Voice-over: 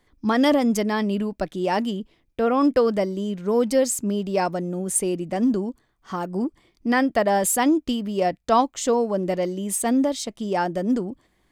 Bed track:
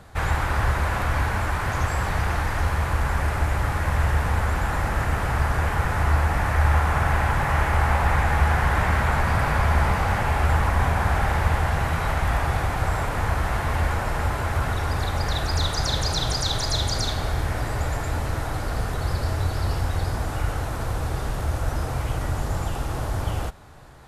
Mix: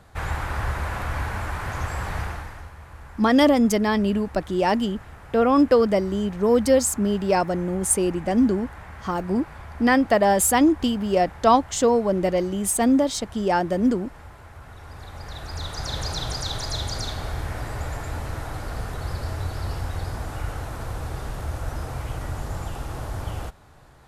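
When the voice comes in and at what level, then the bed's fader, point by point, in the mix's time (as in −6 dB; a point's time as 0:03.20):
2.95 s, +2.0 dB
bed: 0:02.21 −4.5 dB
0:02.73 −19.5 dB
0:14.60 −19.5 dB
0:16.01 −4.5 dB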